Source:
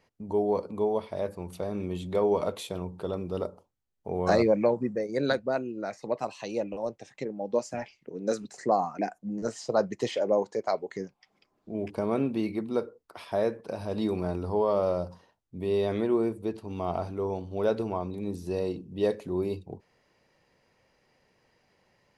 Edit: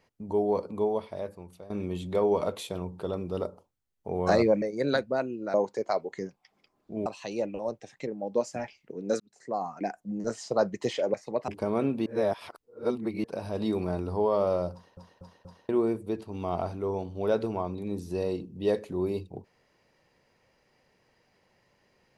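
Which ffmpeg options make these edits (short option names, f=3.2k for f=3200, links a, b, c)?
-filter_complex "[0:a]asplit=14[a][b][c][d][e][f][g][h][i][j][k][l][m][n];[a]atrim=end=1.7,asetpts=PTS-STARTPTS,afade=t=out:st=0.83:d=0.87:silence=0.149624[o];[b]atrim=start=1.7:end=4.622,asetpts=PTS-STARTPTS,afade=t=in:d=0.004:c=hsin:silence=0.149624[p];[c]atrim=start=4.978:end=5.902[q];[d]atrim=start=10.318:end=11.842[r];[e]atrim=start=6.238:end=8.38,asetpts=PTS-STARTPTS,afade=t=out:st=2.138:d=0.004:c=hsin[s];[f]atrim=start=8.38:end=10.322,asetpts=PTS-STARTPTS,afade=t=in:d=0.8[t];[g]atrim=start=5.898:end=6.242[u];[h]atrim=start=11.838:end=12.422[v];[i]atrim=start=12.418:end=13.602,asetpts=PTS-STARTPTS,areverse[w];[j]atrim=start=13.598:end=15.332[x];[k]atrim=start=15.088:end=15.332[y];[l]atrim=start=15.088:end=15.332[z];[m]atrim=start=15.088:end=15.332[aa];[n]atrim=start=16.048[ab];[o][p]concat=n=2:v=0:a=1[ac];[ac][q]acrossfade=d=0.004:c1=hsin:c2=hsin[ad];[ad][r]acrossfade=d=0.004:c1=hsin:c2=hsin[ae];[s][t]concat=n=2:v=0:a=1[af];[ae][af]acrossfade=d=0.004:c1=hsin:c2=hsin[ag];[ag][u]acrossfade=d=0.004:c1=hsin:c2=hsin[ah];[ah][v]acrossfade=d=0.004:c1=hsin:c2=hsin[ai];[ai][w]acrossfade=d=0.004:c1=hsin:c2=hsin[aj];[aj][x]acrossfade=d=0.004:c1=hsin:c2=hsin[ak];[ak][y]acrossfade=d=0.004:c1=hsin:c2=hsin[al];[al][z]acrossfade=d=0.004:c1=hsin:c2=hsin[am];[am][aa]acrossfade=d=0.004:c1=hsin:c2=hsin[an];[an][ab]acrossfade=d=0.004:c1=hsin:c2=hsin"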